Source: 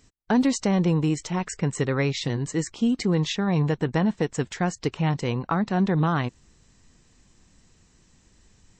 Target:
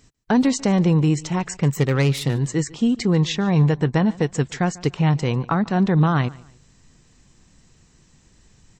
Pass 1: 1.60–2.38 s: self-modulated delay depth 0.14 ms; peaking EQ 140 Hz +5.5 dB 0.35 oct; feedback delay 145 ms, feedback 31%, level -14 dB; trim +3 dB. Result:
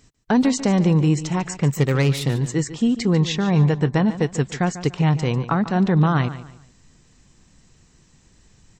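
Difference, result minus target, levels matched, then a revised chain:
echo-to-direct +8 dB
1.60–2.38 s: self-modulated delay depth 0.14 ms; peaking EQ 140 Hz +5.5 dB 0.35 oct; feedback delay 145 ms, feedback 31%, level -22 dB; trim +3 dB

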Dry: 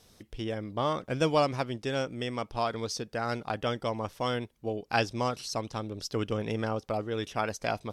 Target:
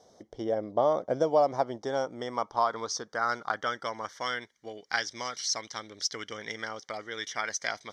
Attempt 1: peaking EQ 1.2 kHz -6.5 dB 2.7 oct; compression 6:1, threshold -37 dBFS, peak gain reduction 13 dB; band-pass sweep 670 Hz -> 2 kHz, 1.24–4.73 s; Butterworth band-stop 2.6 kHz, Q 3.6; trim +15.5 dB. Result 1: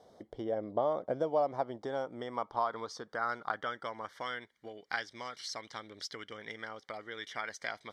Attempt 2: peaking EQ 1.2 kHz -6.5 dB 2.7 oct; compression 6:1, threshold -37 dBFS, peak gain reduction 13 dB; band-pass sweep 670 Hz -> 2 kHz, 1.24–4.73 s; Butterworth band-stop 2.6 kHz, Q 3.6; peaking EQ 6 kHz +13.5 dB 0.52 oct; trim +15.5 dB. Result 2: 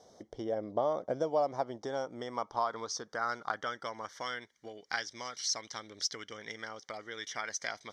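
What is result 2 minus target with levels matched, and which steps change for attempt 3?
compression: peak gain reduction +6 dB
change: compression 6:1, threshold -29.5 dBFS, peak gain reduction 6.5 dB

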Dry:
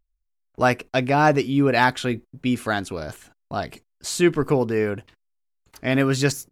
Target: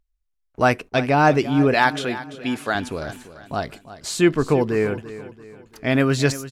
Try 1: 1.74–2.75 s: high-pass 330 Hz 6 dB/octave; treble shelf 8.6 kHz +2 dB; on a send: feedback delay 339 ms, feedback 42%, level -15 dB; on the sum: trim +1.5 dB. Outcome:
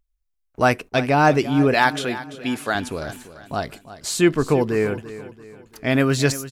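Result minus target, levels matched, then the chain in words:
8 kHz band +3.0 dB
1.74–2.75 s: high-pass 330 Hz 6 dB/octave; treble shelf 8.6 kHz -5.5 dB; on a send: feedback delay 339 ms, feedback 42%, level -15 dB; on the sum: trim +1.5 dB

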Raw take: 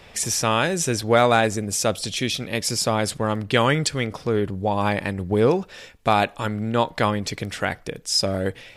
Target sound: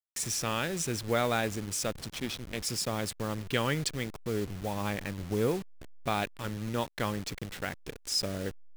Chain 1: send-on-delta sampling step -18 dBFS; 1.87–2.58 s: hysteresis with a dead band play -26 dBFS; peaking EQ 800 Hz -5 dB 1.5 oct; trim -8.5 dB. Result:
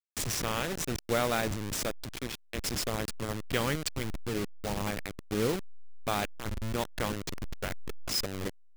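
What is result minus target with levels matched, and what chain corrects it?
send-on-delta sampling: distortion +11 dB
send-on-delta sampling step -27.5 dBFS; 1.87–2.58 s: hysteresis with a dead band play -26 dBFS; peaking EQ 800 Hz -5 dB 1.5 oct; trim -8.5 dB

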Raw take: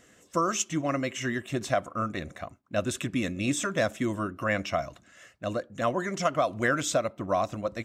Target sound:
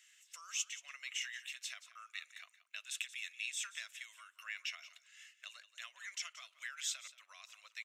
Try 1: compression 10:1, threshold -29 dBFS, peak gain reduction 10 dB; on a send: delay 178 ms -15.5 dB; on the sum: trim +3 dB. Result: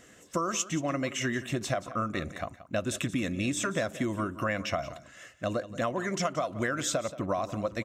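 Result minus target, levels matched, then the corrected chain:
2 kHz band -3.0 dB
compression 10:1, threshold -29 dBFS, peak gain reduction 10 dB; ladder high-pass 2 kHz, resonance 35%; on a send: delay 178 ms -15.5 dB; on the sum: trim +3 dB

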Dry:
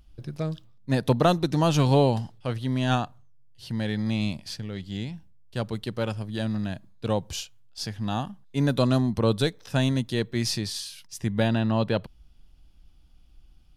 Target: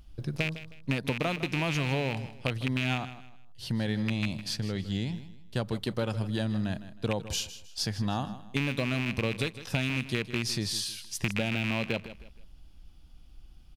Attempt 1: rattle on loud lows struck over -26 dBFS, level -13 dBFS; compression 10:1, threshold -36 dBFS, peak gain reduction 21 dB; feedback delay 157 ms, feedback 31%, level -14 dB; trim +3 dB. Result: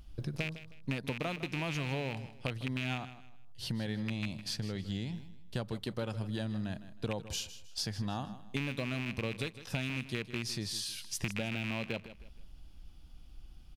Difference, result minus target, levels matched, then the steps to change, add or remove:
compression: peak gain reduction +6.5 dB
change: compression 10:1, threshold -29 dBFS, peak gain reduction 15 dB

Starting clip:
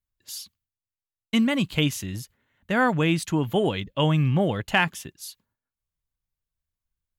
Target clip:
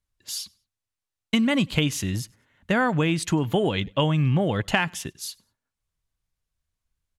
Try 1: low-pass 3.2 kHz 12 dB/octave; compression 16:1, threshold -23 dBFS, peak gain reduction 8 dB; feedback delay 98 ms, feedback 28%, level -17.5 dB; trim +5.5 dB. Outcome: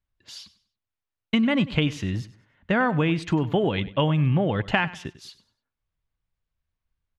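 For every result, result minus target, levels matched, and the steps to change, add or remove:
8 kHz band -14.5 dB; echo-to-direct +10.5 dB
change: low-pass 11 kHz 12 dB/octave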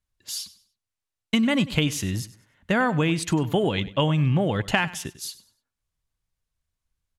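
echo-to-direct +10.5 dB
change: feedback delay 98 ms, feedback 28%, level -28 dB

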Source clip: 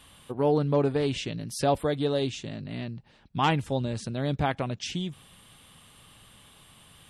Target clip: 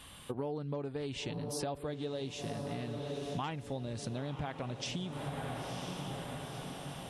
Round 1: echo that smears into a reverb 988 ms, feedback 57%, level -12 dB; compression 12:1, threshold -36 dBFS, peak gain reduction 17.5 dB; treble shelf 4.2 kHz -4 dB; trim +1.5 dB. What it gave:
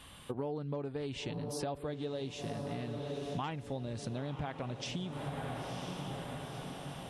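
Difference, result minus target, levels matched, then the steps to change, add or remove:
8 kHz band -3.0 dB
remove: treble shelf 4.2 kHz -4 dB

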